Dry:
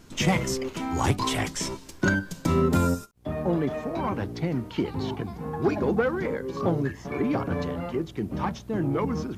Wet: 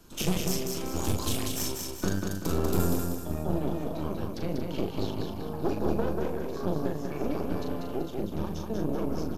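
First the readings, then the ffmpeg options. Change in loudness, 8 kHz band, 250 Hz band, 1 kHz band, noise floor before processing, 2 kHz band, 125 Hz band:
-4.0 dB, +0.5 dB, -4.0 dB, -7.0 dB, -46 dBFS, -11.5 dB, -4.5 dB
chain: -filter_complex "[0:a]asplit=2[a][b];[b]adelay=39,volume=-6dB[c];[a][c]amix=inputs=2:normalize=0,acrossover=split=100|420|3100[d][e][f][g];[f]acompressor=threshold=-40dB:ratio=5[h];[d][e][h][g]amix=inputs=4:normalize=0,aeval=exprs='0.299*(cos(1*acos(clip(val(0)/0.299,-1,1)))-cos(1*PI/2))+0.0596*(cos(6*acos(clip(val(0)/0.299,-1,1)))-cos(6*PI/2))':c=same,equalizer=f=125:t=o:w=0.33:g=-12,equalizer=f=250:t=o:w=0.33:g=-4,equalizer=f=2k:t=o:w=0.33:g=-9,equalizer=f=12.5k:t=o:w=0.33:g=11,aecho=1:1:192|384|576|768|960:0.631|0.271|0.117|0.0502|0.0216,volume=-4dB"

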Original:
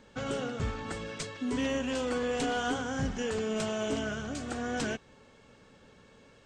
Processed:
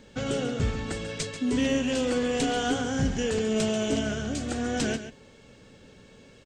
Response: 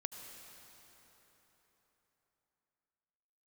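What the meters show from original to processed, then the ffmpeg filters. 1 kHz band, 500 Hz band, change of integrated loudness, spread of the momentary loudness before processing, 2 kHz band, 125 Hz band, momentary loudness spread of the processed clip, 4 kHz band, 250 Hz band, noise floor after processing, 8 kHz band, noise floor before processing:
+2.0 dB, +4.5 dB, +5.5 dB, 6 LU, +2.5 dB, +7.0 dB, 7 LU, +6.0 dB, +6.5 dB, -53 dBFS, +6.5 dB, -59 dBFS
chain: -af "equalizer=f=1.1k:t=o:w=1.3:g=-8,aecho=1:1:138:0.282,volume=6.5dB"

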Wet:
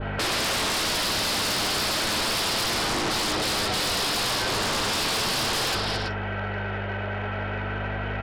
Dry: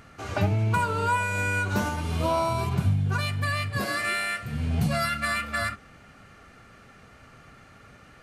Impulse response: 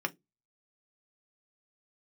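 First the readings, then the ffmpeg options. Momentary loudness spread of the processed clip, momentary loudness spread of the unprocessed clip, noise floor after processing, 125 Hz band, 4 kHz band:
7 LU, 4 LU, -30 dBFS, -6.5 dB, +14.0 dB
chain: -filter_complex "[0:a]equalizer=f=490:w=1.8:g=4.5,highpass=f=220:t=q:w=0.5412,highpass=f=220:t=q:w=1.307,lowpass=f=3.1k:t=q:w=0.5176,lowpass=f=3.1k:t=q:w=0.7071,lowpass=f=3.1k:t=q:w=1.932,afreqshift=160,alimiter=level_in=0.5dB:limit=-24dB:level=0:latency=1:release=18,volume=-0.5dB,aeval=exprs='val(0)+0.00447*(sin(2*PI*50*n/s)+sin(2*PI*2*50*n/s)/2+sin(2*PI*3*50*n/s)/3+sin(2*PI*4*50*n/s)/4+sin(2*PI*5*50*n/s)/5)':c=same,aresample=11025,aeval=exprs='(mod(53.1*val(0)+1,2)-1)/53.1':c=same,aresample=44100,adynamicequalizer=threshold=0.00158:dfrequency=2200:dqfactor=1.4:tfrequency=2200:tqfactor=1.4:attack=5:release=100:ratio=0.375:range=3.5:mode=cutabove:tftype=bell,flanger=delay=8.7:depth=1.4:regen=-30:speed=0.37:shape=triangular,aecho=1:1:217|331:0.473|0.335,asplit=2[a][b];[1:a]atrim=start_sample=2205,adelay=46[c];[b][c]afir=irnorm=-1:irlink=0,volume=-16dB[d];[a][d]amix=inputs=2:normalize=0,aeval=exprs='0.0282*sin(PI/2*3.55*val(0)/0.0282)':c=same,volume=8.5dB"

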